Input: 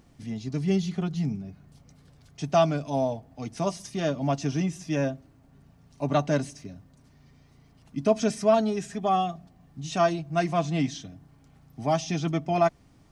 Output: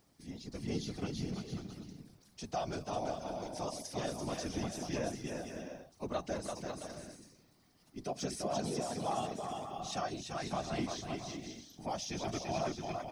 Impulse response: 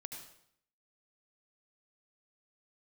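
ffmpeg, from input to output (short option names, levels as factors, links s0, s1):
-af "highpass=f=250:p=1,alimiter=limit=0.106:level=0:latency=1:release=88,aecho=1:1:340|544|666.4|739.8|783.9:0.631|0.398|0.251|0.158|0.1,aexciter=amount=1.1:drive=9:freq=4000,afftfilt=real='hypot(re,im)*cos(2*PI*random(0))':imag='hypot(re,im)*sin(2*PI*random(1))':win_size=512:overlap=0.75,volume=0.708"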